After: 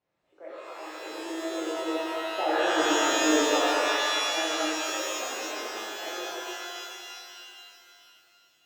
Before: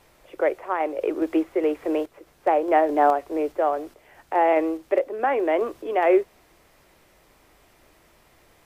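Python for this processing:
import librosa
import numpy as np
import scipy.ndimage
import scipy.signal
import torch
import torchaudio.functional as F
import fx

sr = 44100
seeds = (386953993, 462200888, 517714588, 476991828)

p1 = fx.doppler_pass(x, sr, speed_mps=12, closest_m=1.9, pass_at_s=2.96)
p2 = scipy.signal.sosfilt(scipy.signal.butter(2, 120.0, 'highpass', fs=sr, output='sos'), p1)
p3 = fx.low_shelf(p2, sr, hz=440.0, db=4.5)
p4 = fx.over_compress(p3, sr, threshold_db=-27.0, ratio=-0.5)
p5 = fx.air_absorb(p4, sr, metres=120.0)
p6 = p5 + fx.echo_wet_highpass(p5, sr, ms=201, feedback_pct=74, hz=1700.0, wet_db=-6.5, dry=0)
p7 = fx.rev_shimmer(p6, sr, seeds[0], rt60_s=2.6, semitones=12, shimmer_db=-2, drr_db=-9.0)
y = p7 * 10.0 ** (-7.5 / 20.0)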